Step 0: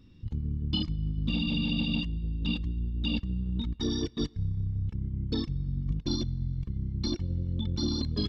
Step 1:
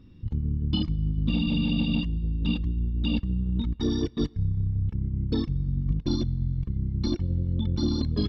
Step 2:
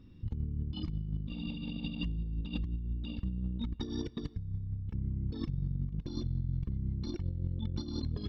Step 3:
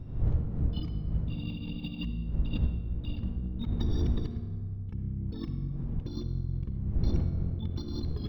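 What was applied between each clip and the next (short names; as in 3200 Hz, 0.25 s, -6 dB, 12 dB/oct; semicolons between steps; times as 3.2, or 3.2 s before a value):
high shelf 2900 Hz -10 dB; gain +4.5 dB
negative-ratio compressor -28 dBFS, ratio -0.5; gain -6.5 dB
wind noise 84 Hz -33 dBFS; reverb RT60 1.9 s, pre-delay 53 ms, DRR 7.5 dB; decimation joined by straight lines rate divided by 2×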